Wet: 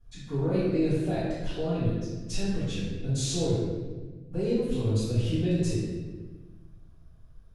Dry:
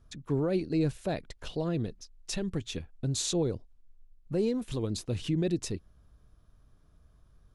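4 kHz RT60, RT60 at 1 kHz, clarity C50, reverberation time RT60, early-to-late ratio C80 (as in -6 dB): 0.95 s, 1.2 s, -2.5 dB, 1.3 s, 1.0 dB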